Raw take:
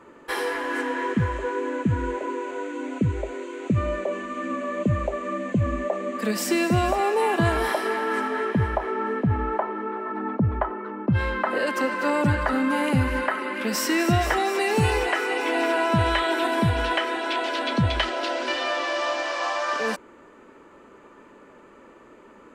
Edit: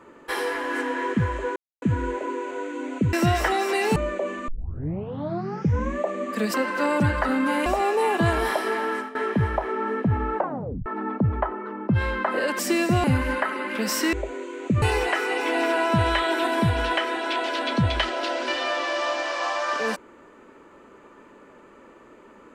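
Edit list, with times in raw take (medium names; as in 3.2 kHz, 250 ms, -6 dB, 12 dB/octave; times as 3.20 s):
1.56–1.82 s: mute
3.13–3.82 s: swap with 13.99–14.82 s
4.34 s: tape start 1.50 s
6.40–6.85 s: swap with 11.78–12.90 s
8.06–8.34 s: fade out, to -17 dB
9.56 s: tape stop 0.49 s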